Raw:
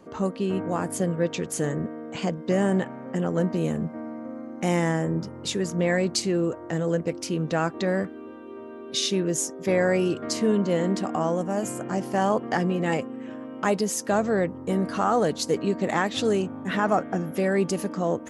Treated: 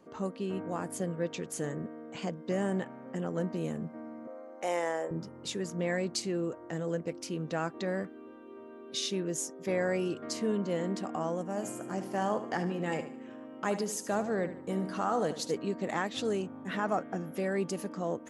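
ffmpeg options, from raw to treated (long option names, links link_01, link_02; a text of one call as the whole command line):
ffmpeg -i in.wav -filter_complex "[0:a]asettb=1/sr,asplit=3[link_01][link_02][link_03];[link_01]atrim=end=4.274[link_04];[link_02]atrim=start=4.27:end=5.11,asetpts=PTS-STARTPTS,afade=type=in:duration=0.004:curve=qsin,afade=type=out:start_time=0.836:duration=0.004:curve=qsin,highpass=frequency=540:width_type=q:width=1.9[link_05];[link_03]atrim=start=5.106[link_06];[link_04][link_05]acrossfade=duration=0.004:curve1=hsin:curve2=qsin[link_07];[link_07][link_06]acrossfade=duration=0.004:curve1=qsin:curve2=hsin,asettb=1/sr,asplit=3[link_08][link_09][link_10];[link_08]atrim=end=11.484[link_11];[link_09]atrim=start=11.48:end=15.52,asetpts=PTS-STARTPTS,afade=type=in:duration=0.004:curve=qsin,afade=type=out:start_time=4.036:duration=0.004:curve=qsin,aecho=1:1:74|148|222|296:0.266|0.104|0.0405|0.0158,atrim=end_sample=178164[link_12];[link_10]atrim=start=15.516[link_13];[link_11][link_12]acrossfade=duration=0.004:curve1=hsin:curve2=qsin[link_14];[link_14][link_13]acrossfade=duration=0.004:curve1=qsin:curve2=hsin,equalizer=frequency=66:width=1.1:gain=-8,volume=-8dB" out.wav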